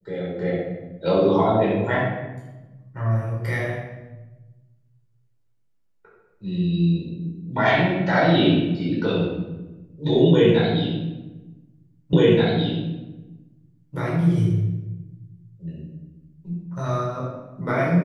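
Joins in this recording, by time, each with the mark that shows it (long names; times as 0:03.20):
0:12.13: the same again, the last 1.83 s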